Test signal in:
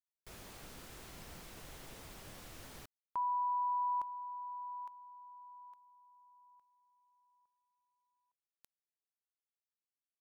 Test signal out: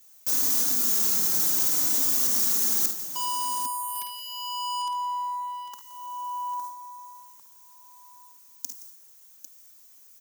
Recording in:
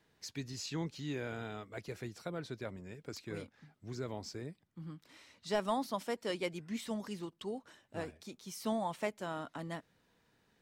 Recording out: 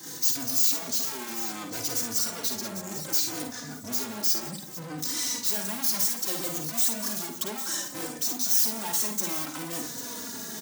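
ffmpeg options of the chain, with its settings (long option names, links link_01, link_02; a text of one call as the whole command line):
ffmpeg -i in.wav -filter_complex "[0:a]equalizer=frequency=250:width_type=o:width=0.67:gain=10,equalizer=frequency=630:width_type=o:width=0.67:gain=-5,equalizer=frequency=2500:width_type=o:width=0.67:gain=-11,equalizer=frequency=6300:width_type=o:width=0.67:gain=11,apsyclip=27.5dB,agate=range=-8dB:threshold=-41dB:ratio=16:release=343:detection=rms,aeval=exprs='(tanh(22.4*val(0)+0.05)-tanh(0.05))/22.4':channel_layout=same,areverse,acompressor=threshold=-38dB:ratio=20:attack=22:release=147:knee=6:detection=peak,areverse,highpass=frequency=79:width=0.5412,highpass=frequency=79:width=1.3066,aemphasis=mode=production:type=bsi,aecho=1:1:46|52|72|171|799:0.158|0.447|0.224|0.141|0.299,acrusher=bits=10:mix=0:aa=0.000001,asplit=2[link_01][link_02];[link_02]adelay=3.4,afreqshift=-0.63[link_03];[link_01][link_03]amix=inputs=2:normalize=1,volume=6dB" out.wav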